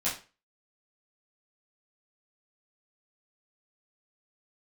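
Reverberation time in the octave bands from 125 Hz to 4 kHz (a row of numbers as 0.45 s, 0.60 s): 0.35 s, 0.35 s, 0.35 s, 0.30 s, 0.35 s, 0.30 s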